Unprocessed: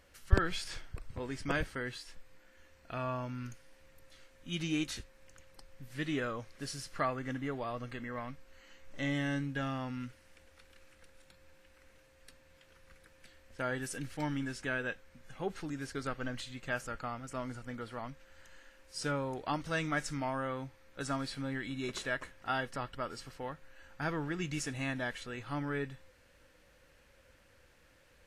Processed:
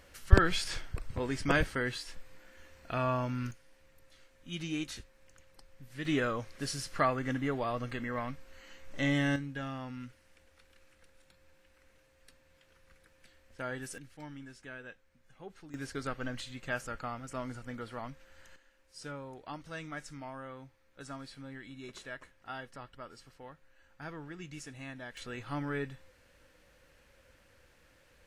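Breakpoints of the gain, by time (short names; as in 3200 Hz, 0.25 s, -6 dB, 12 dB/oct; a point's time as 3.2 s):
+5.5 dB
from 3.51 s -2.5 dB
from 6.05 s +4.5 dB
from 9.36 s -3 dB
from 13.98 s -11 dB
from 15.74 s +0.5 dB
from 18.56 s -8.5 dB
from 25.17 s +0.5 dB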